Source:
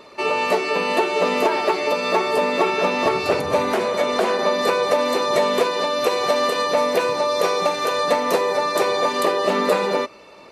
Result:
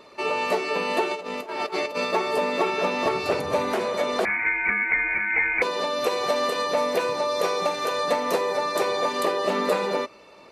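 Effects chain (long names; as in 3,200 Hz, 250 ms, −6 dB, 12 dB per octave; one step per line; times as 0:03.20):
0:01.11–0:02.13: compressor whose output falls as the input rises −24 dBFS, ratio −0.5
0:04.25–0:05.62: voice inversion scrambler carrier 2,700 Hz
level −4.5 dB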